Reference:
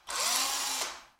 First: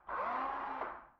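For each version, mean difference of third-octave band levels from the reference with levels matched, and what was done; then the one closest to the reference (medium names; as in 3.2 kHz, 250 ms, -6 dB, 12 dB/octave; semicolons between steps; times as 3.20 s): 14.5 dB: low-pass 1.5 kHz 24 dB/octave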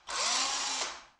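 3.5 dB: steep low-pass 7.7 kHz 36 dB/octave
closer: second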